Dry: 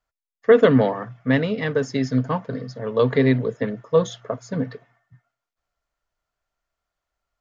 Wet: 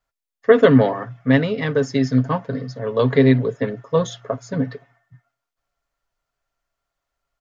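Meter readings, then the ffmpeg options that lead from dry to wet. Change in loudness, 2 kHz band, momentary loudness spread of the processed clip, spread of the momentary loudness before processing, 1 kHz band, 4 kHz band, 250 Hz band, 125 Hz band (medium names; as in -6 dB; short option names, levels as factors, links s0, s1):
+2.0 dB, +2.0 dB, 13 LU, 13 LU, +2.0 dB, +2.5 dB, +3.5 dB, +4.0 dB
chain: -af "aecho=1:1:7.3:0.37,volume=1.19"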